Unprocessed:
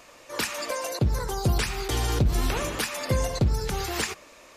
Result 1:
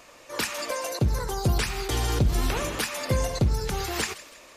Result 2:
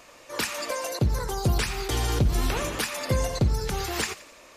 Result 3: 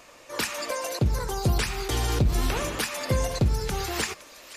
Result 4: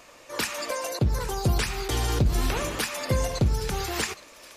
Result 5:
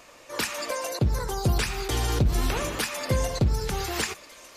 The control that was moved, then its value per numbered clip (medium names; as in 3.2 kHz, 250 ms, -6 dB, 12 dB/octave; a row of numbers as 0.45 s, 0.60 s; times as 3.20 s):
feedback echo behind a high-pass, time: 161 ms, 87 ms, 514 ms, 817 ms, 1202 ms